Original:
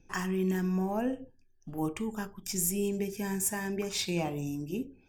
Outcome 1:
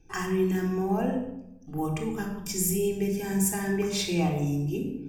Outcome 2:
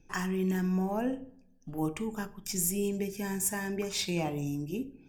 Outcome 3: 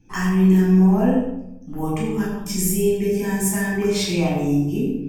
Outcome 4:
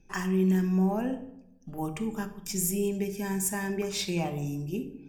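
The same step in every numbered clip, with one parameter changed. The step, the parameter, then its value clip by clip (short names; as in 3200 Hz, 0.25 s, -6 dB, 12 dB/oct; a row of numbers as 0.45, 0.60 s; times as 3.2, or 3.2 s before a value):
shoebox room, microphone at: 3.7, 0.4, 11, 1.2 m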